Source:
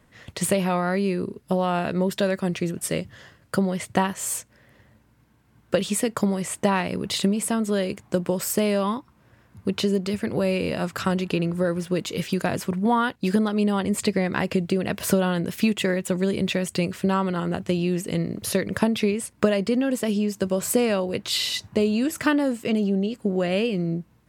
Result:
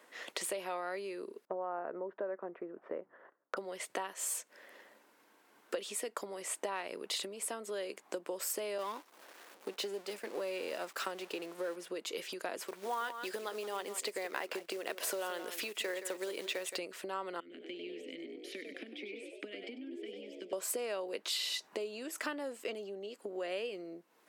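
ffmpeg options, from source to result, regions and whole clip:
ffmpeg -i in.wav -filter_complex "[0:a]asettb=1/sr,asplit=3[link_01][link_02][link_03];[link_01]atrim=end=1.454[link_04];[link_02]atrim=start=1.45:end=3.57,asetpts=PTS-STARTPTS,afade=type=in:duration=0.004:curve=qsin,afade=type=out:start_time=2.116:duration=0.004:curve=qsin,lowpass=frequency=1400:width=0.5412,lowpass=frequency=1400:width=1.3066,agate=range=-19dB:threshold=-51dB:ratio=16:release=100:detection=peak[link_05];[link_03]atrim=start=3.566[link_06];[link_04][link_05]acrossfade=duration=0.004:curve1=hsin:curve2=qsin[link_07];[link_07][link_06]acrossfade=duration=0.004:curve1=qsin:curve2=hsin,asettb=1/sr,asplit=3[link_08][link_09][link_10];[link_08]atrim=end=8.784[link_11];[link_09]atrim=start=8.78:end=11.76,asetpts=PTS-STARTPTS,afade=type=in:duration=0.004:curve=qsin,afade=type=out:start_time=2.976:duration=0.004:curve=qsin,aeval=exprs='val(0)+0.5*0.0316*sgn(val(0))':channel_layout=same,highpass=130,agate=range=-33dB:threshold=-25dB:ratio=3:release=100:detection=peak[link_12];[link_10]atrim=start=11.756[link_13];[link_11][link_12]acrossfade=duration=0.004:curve1=hsin:curve2=qsin[link_14];[link_14][link_13]acrossfade=duration=0.004:curve1=qsin:curve2=hsin,asettb=1/sr,asplit=3[link_15][link_16][link_17];[link_15]atrim=end=12.664[link_18];[link_16]atrim=start=12.66:end=16.77,asetpts=PTS-STARTPTS,afade=type=in:duration=0.004:curve=qsin,afade=type=out:start_time=4.106:duration=0.004:curve=qsin,equalizer=frequency=150:width_type=o:width=1.6:gain=-9.5,acrusher=bits=4:mode=log:mix=0:aa=0.000001,aecho=1:1:171:0.224,atrim=end_sample=181251[link_19];[link_17]atrim=start=16.766[link_20];[link_18][link_19]acrossfade=duration=0.004:curve1=hsin:curve2=qsin[link_21];[link_21][link_20]acrossfade=duration=0.004:curve1=qsin:curve2=hsin,asettb=1/sr,asplit=3[link_22][link_23][link_24];[link_22]atrim=end=17.404[link_25];[link_23]atrim=start=17.4:end=20.53,asetpts=PTS-STARTPTS,afade=type=in:duration=0.004:curve=qsin,afade=type=out:start_time=3.126:duration=0.004:curve=qsin,asplit=3[link_26][link_27][link_28];[link_26]bandpass=frequency=270:width_type=q:width=8,volume=0dB[link_29];[link_27]bandpass=frequency=2290:width_type=q:width=8,volume=-6dB[link_30];[link_28]bandpass=frequency=3010:width_type=q:width=8,volume=-9dB[link_31];[link_29][link_30][link_31]amix=inputs=3:normalize=0,asplit=6[link_32][link_33][link_34][link_35][link_36][link_37];[link_33]adelay=98,afreqshift=73,volume=-8dB[link_38];[link_34]adelay=196,afreqshift=146,volume=-15.1dB[link_39];[link_35]adelay=294,afreqshift=219,volume=-22.3dB[link_40];[link_36]adelay=392,afreqshift=292,volume=-29.4dB[link_41];[link_37]adelay=490,afreqshift=365,volume=-36.5dB[link_42];[link_32][link_38][link_39][link_40][link_41][link_42]amix=inputs=6:normalize=0,atrim=end_sample=138033[link_43];[link_24]atrim=start=20.526[link_44];[link_25][link_43]acrossfade=duration=0.004:curve1=hsin:curve2=qsin[link_45];[link_45][link_44]acrossfade=duration=0.004:curve1=qsin:curve2=hsin,acompressor=threshold=-38dB:ratio=4,highpass=frequency=360:width=0.5412,highpass=frequency=360:width=1.3066,volume=2dB" out.wav

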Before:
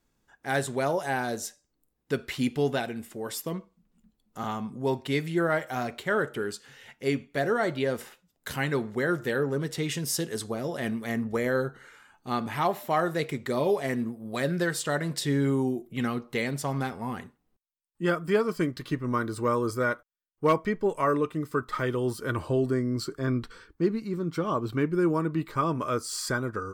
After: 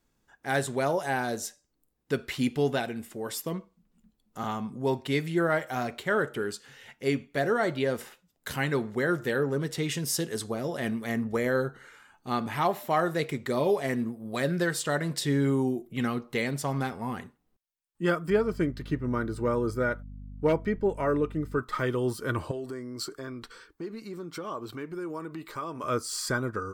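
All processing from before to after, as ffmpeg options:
ffmpeg -i in.wav -filter_complex "[0:a]asettb=1/sr,asplit=3[link_01][link_02][link_03];[link_01]atrim=end=18.304[link_04];[link_02]atrim=start=18.3:end=21.59,asetpts=PTS-STARTPTS,afade=type=in:duration=0.004:curve=qsin,afade=type=out:start_time=3.286:duration=0.004:curve=qsin,highshelf=frequency=2700:gain=-8,bandreject=frequency=1100:width=6,aeval=exprs='val(0)+0.00891*(sin(2*PI*50*n/s)+sin(2*PI*2*50*n/s)/2+sin(2*PI*3*50*n/s)/3+sin(2*PI*4*50*n/s)/4+sin(2*PI*5*50*n/s)/5)':channel_layout=same[link_05];[link_03]atrim=start=21.586[link_06];[link_04][link_05]acrossfade=duration=0.004:curve1=hsin:curve2=qsin[link_07];[link_07][link_06]acrossfade=duration=0.004:curve1=qsin:curve2=hsin,asettb=1/sr,asplit=3[link_08][link_09][link_10];[link_08]atrim=end=22.514[link_11];[link_09]atrim=start=22.51:end=25.84,asetpts=PTS-STARTPTS,afade=type=in:duration=0.004:curve=qsin,afade=type=out:start_time=3.326:duration=0.004:curve=qsin,acompressor=threshold=-30dB:ratio=5:attack=3.2:release=140:knee=1:detection=peak,bass=frequency=250:gain=-10,treble=frequency=4000:gain=3[link_12];[link_10]atrim=start=25.836[link_13];[link_11][link_12]acrossfade=duration=0.004:curve1=hsin:curve2=qsin[link_14];[link_14][link_13]acrossfade=duration=0.004:curve1=qsin:curve2=hsin" out.wav

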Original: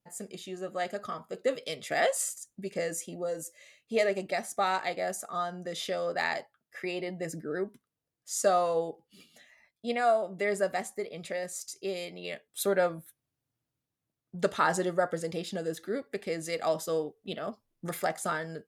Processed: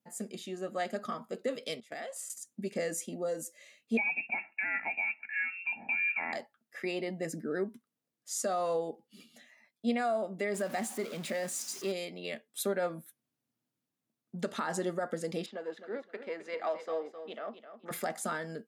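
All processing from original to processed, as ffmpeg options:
ffmpeg -i in.wav -filter_complex "[0:a]asettb=1/sr,asplit=3[link_01][link_02][link_03];[link_01]atrim=end=1.804[link_04];[link_02]atrim=start=1.8:end=2.3,asetpts=PTS-STARTPTS,afade=type=in:duration=0.004:curve=qsin,afade=type=out:start_time=0.496:duration=0.004:curve=qsin,agate=range=-19dB:threshold=-34dB:ratio=16:release=100:detection=peak,acompressor=threshold=-37dB:ratio=8:attack=3.2:release=140:knee=1:detection=peak[link_05];[link_03]atrim=start=2.296[link_06];[link_04][link_05]acrossfade=duration=0.004:curve1=hsin:curve2=qsin[link_07];[link_07][link_06]acrossfade=duration=0.004:curve1=qsin:curve2=hsin,asettb=1/sr,asplit=3[link_08][link_09][link_10];[link_08]atrim=end=3.974[link_11];[link_09]atrim=start=3.97:end=6.33,asetpts=PTS-STARTPTS,afade=type=in:duration=0.004:curve=qsin,afade=type=out:start_time=2.356:duration=0.004:curve=qsin,aecho=1:1:1.9:0.65,atrim=end_sample=104076,lowpass=frequency=2500:width_type=q:width=0.5098,lowpass=frequency=2500:width_type=q:width=0.6013,lowpass=frequency=2500:width_type=q:width=0.9,lowpass=frequency=2500:width_type=q:width=2.563,afreqshift=-2900,asuperstop=centerf=1200:order=4:qfactor=3.2[link_12];[link_10]atrim=start=6.326[link_13];[link_11][link_12]acrossfade=duration=0.004:curve1=hsin:curve2=qsin[link_14];[link_14][link_13]acrossfade=duration=0.004:curve1=qsin:curve2=hsin,asettb=1/sr,asplit=3[link_15][link_16][link_17];[link_15]atrim=end=10.544[link_18];[link_16]atrim=start=10.54:end=11.92,asetpts=PTS-STARTPTS,afade=type=in:duration=0.004:curve=qsin,afade=type=out:start_time=1.376:duration=0.004:curve=qsin,aeval=exprs='val(0)+0.5*0.0112*sgn(val(0))':channel_layout=same,equalizer=frequency=450:width_type=o:width=0.34:gain=-4.5[link_19];[link_17]atrim=start=11.916[link_20];[link_18][link_19]acrossfade=duration=0.004:curve1=hsin:curve2=qsin[link_21];[link_21][link_20]acrossfade=duration=0.004:curve1=qsin:curve2=hsin,asettb=1/sr,asplit=3[link_22][link_23][link_24];[link_22]atrim=end=15.464[link_25];[link_23]atrim=start=15.46:end=17.91,asetpts=PTS-STARTPTS,afade=type=in:duration=0.004:curve=qsin,afade=type=out:start_time=2.446:duration=0.004:curve=qsin,aeval=exprs='if(lt(val(0),0),0.708*val(0),val(0))':channel_layout=same,highpass=490,lowpass=2400,aecho=1:1:260|520|780:0.299|0.0746|0.0187,atrim=end_sample=108045[link_26];[link_24]atrim=start=17.906[link_27];[link_25][link_26]acrossfade=duration=0.004:curve1=hsin:curve2=qsin[link_28];[link_28][link_27]acrossfade=duration=0.004:curve1=qsin:curve2=hsin,highpass=160,alimiter=limit=-23dB:level=0:latency=1:release=125,equalizer=frequency=230:width=3.7:gain=10,volume=-1dB" out.wav

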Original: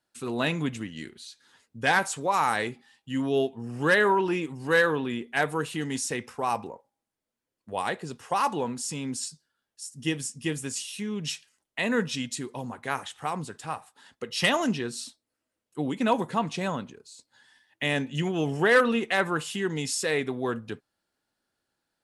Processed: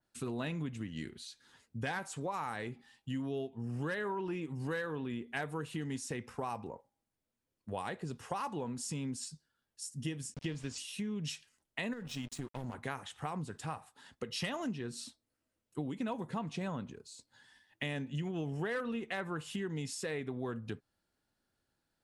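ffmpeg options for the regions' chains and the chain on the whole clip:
ffmpeg -i in.wav -filter_complex "[0:a]asettb=1/sr,asplit=3[link_01][link_02][link_03];[link_01]atrim=end=10.344[link_04];[link_02]atrim=start=10.34:end=10.78,asetpts=PTS-STARTPTS,afade=type=in:duration=0.004:curve=qsin,afade=type=out:start_time=0.436:duration=0.004:curve=qsin,aeval=exprs='val(0)*gte(abs(val(0)),0.01)':channel_layout=same,lowpass=frequency=5100:width_type=q:width=1.5[link_05];[link_03]atrim=start=10.776[link_06];[link_04][link_05]acrossfade=duration=0.004:curve1=hsin:curve2=qsin[link_07];[link_07][link_06]acrossfade=duration=0.004:curve1=qsin:curve2=hsin,asettb=1/sr,asplit=3[link_08][link_09][link_10];[link_08]atrim=end=11.934[link_11];[link_09]atrim=start=11.93:end=12.74,asetpts=PTS-STARTPTS,afade=type=in:duration=0.004:curve=qsin,afade=type=out:start_time=0.806:duration=0.004:curve=qsin,aeval=exprs='sgn(val(0))*max(abs(val(0))-0.00841,0)':channel_layout=same,acompressor=threshold=-32dB:ratio=5:attack=3.2:release=140:knee=1:detection=peak[link_12];[link_10]atrim=start=12.736[link_13];[link_11][link_12]acrossfade=duration=0.004:curve1=hsin:curve2=qsin[link_14];[link_14][link_13]acrossfade=duration=0.004:curve1=qsin:curve2=hsin,lowshelf=frequency=180:gain=11,acompressor=threshold=-32dB:ratio=5,adynamicequalizer=threshold=0.00316:dfrequency=3200:dqfactor=0.7:tfrequency=3200:tqfactor=0.7:attack=5:release=100:ratio=0.375:range=2.5:mode=cutabove:tftype=highshelf,volume=-3.5dB" out.wav

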